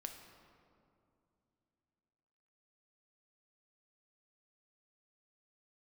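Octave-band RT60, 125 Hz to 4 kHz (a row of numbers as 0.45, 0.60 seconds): 3.5, 3.5, 2.9, 2.5, 1.7, 1.3 seconds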